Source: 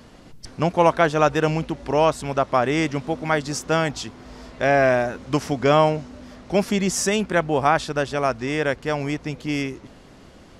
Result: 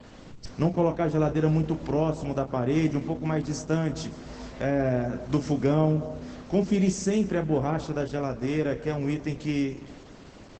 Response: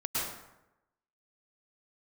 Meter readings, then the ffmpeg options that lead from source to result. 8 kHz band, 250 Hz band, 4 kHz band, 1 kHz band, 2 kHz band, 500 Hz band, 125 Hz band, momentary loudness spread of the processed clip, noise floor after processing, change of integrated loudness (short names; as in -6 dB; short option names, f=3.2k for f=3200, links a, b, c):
-10.0 dB, -0.5 dB, -11.5 dB, -12.5 dB, -13.5 dB, -7.0 dB, +0.5 dB, 12 LU, -47 dBFS, -5.5 dB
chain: -filter_complex "[0:a]adynamicequalizer=threshold=0.00447:dfrequency=6000:dqfactor=3.2:tfrequency=6000:tqfactor=3.2:attack=5:release=100:ratio=0.375:range=2:mode=boostabove:tftype=bell,acrossover=split=430[a][b];[b]acompressor=threshold=-38dB:ratio=3[c];[a][c]amix=inputs=2:normalize=0,asplit=2[d][e];[e]adelay=32,volume=-8.5dB[f];[d][f]amix=inputs=2:normalize=0,asplit=2[g][h];[h]adelay=272,lowpass=f=2.6k:p=1,volume=-20dB,asplit=2[i][j];[j]adelay=272,lowpass=f=2.6k:p=1,volume=0.3[k];[g][i][k]amix=inputs=3:normalize=0,asplit=2[l][m];[1:a]atrim=start_sample=2205,adelay=22[n];[m][n]afir=irnorm=-1:irlink=0,volume=-20.5dB[o];[l][o]amix=inputs=2:normalize=0" -ar 48000 -c:a libopus -b:a 12k